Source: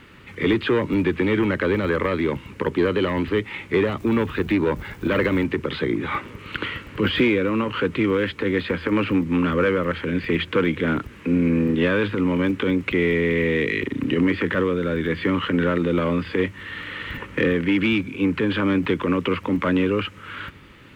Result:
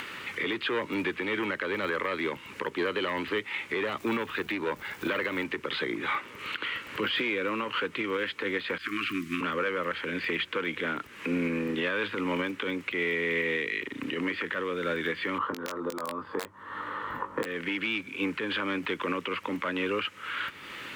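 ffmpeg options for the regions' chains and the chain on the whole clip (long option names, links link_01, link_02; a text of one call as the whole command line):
ffmpeg -i in.wav -filter_complex "[0:a]asettb=1/sr,asplit=3[link_01][link_02][link_03];[link_01]atrim=end=8.784[link_04];[link_02]atrim=start=8.78:end=9.41,asetpts=PTS-STARTPTS,afade=type=in:duration=0.004:curve=qsin,afade=type=out:start_time=0.626:duration=0.004:curve=qsin,highshelf=frequency=3700:gain=9,agate=range=-33dB:threshold=-30dB:ratio=3:release=100:detection=peak,asuperstop=centerf=650:order=20:qfactor=0.97[link_05];[link_03]atrim=start=9.406[link_06];[link_04][link_05]acrossfade=duration=0.004:curve1=hsin:curve2=qsin[link_07];[link_07][link_06]acrossfade=duration=0.004:curve1=qsin:curve2=hsin,asettb=1/sr,asplit=3[link_08][link_09][link_10];[link_08]atrim=end=15.384[link_11];[link_09]atrim=start=15.38:end=17.46,asetpts=PTS-STARTPTS,afade=type=in:duration=0.004:curve=qsin,afade=type=out:start_time=2.076:duration=0.004:curve=qsin,highshelf=frequency=1600:width_type=q:width=3:gain=-14,aeval=exprs='(mod(3.16*val(0)+1,2)-1)/3.16':channel_layout=same,asplit=2[link_12][link_13];[link_13]adelay=20,volume=-7dB[link_14];[link_12][link_14]amix=inputs=2:normalize=0,atrim=end_sample=91728[link_15];[link_10]atrim=start=17.456[link_16];[link_11][link_15]acrossfade=duration=0.004:curve1=hsin:curve2=qsin[link_17];[link_17][link_16]acrossfade=duration=0.004:curve1=qsin:curve2=hsin,highpass=frequency=990:poles=1,acompressor=mode=upward:threshold=-33dB:ratio=2.5,alimiter=limit=-22dB:level=0:latency=1:release=352,volume=2.5dB" out.wav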